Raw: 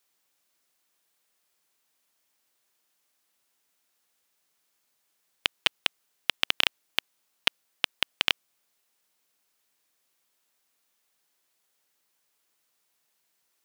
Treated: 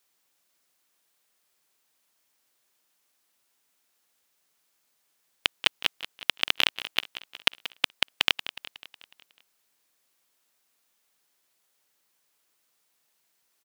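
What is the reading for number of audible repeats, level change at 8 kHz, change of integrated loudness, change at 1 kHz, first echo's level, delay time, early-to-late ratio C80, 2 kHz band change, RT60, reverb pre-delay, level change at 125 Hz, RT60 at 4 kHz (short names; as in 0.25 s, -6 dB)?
5, +1.5 dB, +1.5 dB, +1.5 dB, -14.0 dB, 0.183 s, none, +2.0 dB, none, none, +2.0 dB, none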